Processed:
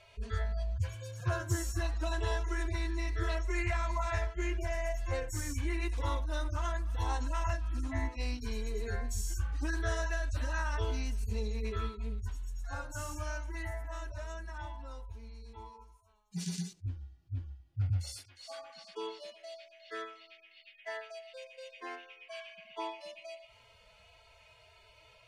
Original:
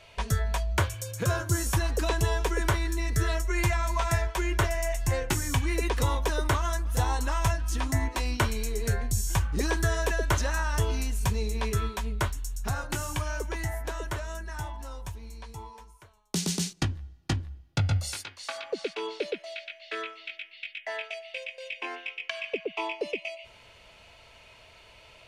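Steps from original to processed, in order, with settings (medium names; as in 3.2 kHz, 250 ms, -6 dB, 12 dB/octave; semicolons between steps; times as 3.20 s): harmonic-percussive separation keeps harmonic; loudspeaker Doppler distortion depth 0.14 ms; trim -5 dB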